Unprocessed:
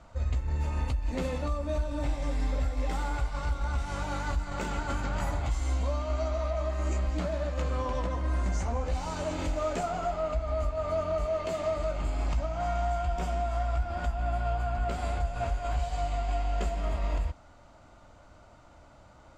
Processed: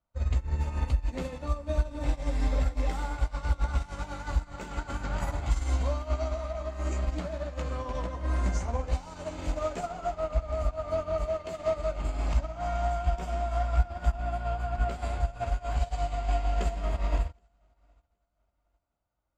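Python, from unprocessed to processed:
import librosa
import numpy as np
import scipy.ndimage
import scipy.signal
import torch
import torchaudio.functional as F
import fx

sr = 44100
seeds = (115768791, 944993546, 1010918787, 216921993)

y = fx.echo_feedback(x, sr, ms=771, feedback_pct=53, wet_db=-16.5)
y = fx.upward_expand(y, sr, threshold_db=-49.0, expansion=2.5)
y = y * 10.0 ** (7.0 / 20.0)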